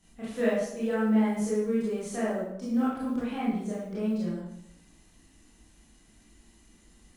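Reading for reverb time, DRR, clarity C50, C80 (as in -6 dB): 0.75 s, -9.0 dB, 0.0 dB, 4.0 dB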